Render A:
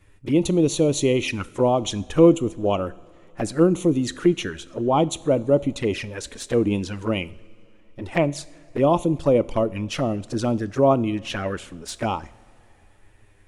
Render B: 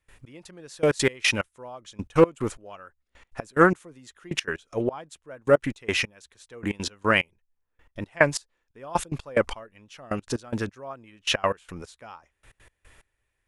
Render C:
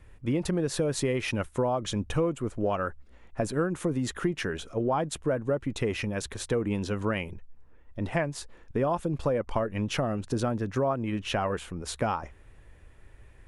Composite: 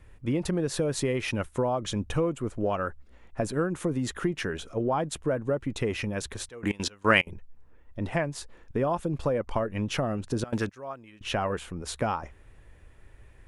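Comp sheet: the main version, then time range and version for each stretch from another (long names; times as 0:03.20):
C
0:06.49–0:07.27: punch in from B
0:10.44–0:11.21: punch in from B
not used: A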